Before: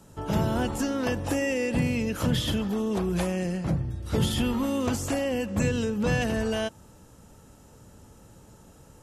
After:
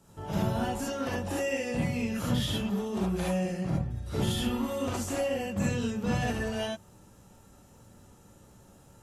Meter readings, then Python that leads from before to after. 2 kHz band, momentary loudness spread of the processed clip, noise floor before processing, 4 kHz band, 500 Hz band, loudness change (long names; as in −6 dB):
−4.0 dB, 3 LU, −53 dBFS, −3.0 dB, −3.5 dB, −3.5 dB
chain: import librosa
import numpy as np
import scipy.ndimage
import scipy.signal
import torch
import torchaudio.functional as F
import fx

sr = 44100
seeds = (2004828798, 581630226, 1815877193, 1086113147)

y = fx.dmg_crackle(x, sr, seeds[0], per_s=41.0, level_db=-54.0)
y = fx.rev_gated(y, sr, seeds[1], gate_ms=90, shape='rising', drr_db=-4.5)
y = y * librosa.db_to_amplitude(-8.5)